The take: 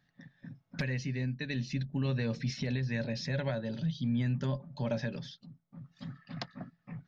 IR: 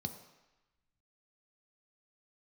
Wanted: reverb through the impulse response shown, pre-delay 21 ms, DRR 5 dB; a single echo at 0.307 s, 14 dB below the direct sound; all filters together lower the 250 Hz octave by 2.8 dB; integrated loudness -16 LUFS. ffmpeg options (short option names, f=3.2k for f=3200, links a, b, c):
-filter_complex "[0:a]equalizer=f=250:t=o:g=-3.5,aecho=1:1:307:0.2,asplit=2[a][b];[1:a]atrim=start_sample=2205,adelay=21[c];[b][c]afir=irnorm=-1:irlink=0,volume=-4dB[d];[a][d]amix=inputs=2:normalize=0,volume=14dB"